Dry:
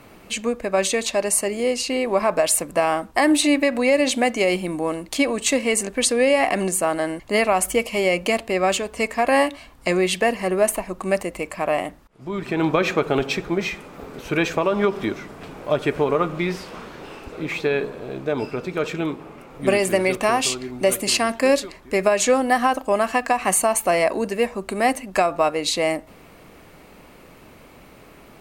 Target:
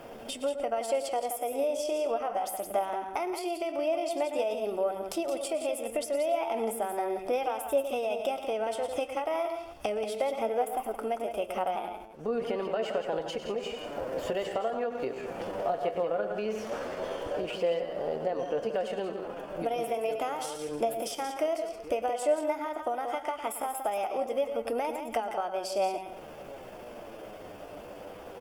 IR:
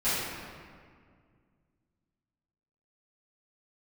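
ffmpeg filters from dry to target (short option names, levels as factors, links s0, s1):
-filter_complex "[0:a]asplit=2[s0][s1];[s1]aecho=0:1:104:0.251[s2];[s0][s2]amix=inputs=2:normalize=0,acompressor=threshold=0.0282:ratio=12,bandreject=f=3300:w=8.9,asplit=2[s3][s4];[s4]aecho=0:1:172:0.376[s5];[s3][s5]amix=inputs=2:normalize=0,flanger=delay=5.1:depth=7.2:regen=69:speed=0.16:shape=sinusoidal,equalizer=f=490:t=o:w=1.1:g=12,asetrate=52444,aresample=44100,atempo=0.840896"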